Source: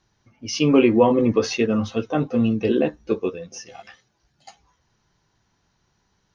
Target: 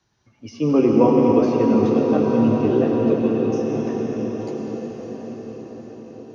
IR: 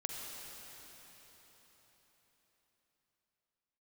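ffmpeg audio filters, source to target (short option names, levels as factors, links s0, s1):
-filter_complex "[0:a]acrossover=split=240|700|1400[s0][s1][s2][s3];[s0]highpass=59[s4];[s3]acompressor=threshold=0.00501:ratio=6[s5];[s4][s1][s2][s5]amix=inputs=4:normalize=0[s6];[1:a]atrim=start_sample=2205,asetrate=22491,aresample=44100[s7];[s6][s7]afir=irnorm=-1:irlink=0,volume=0.75"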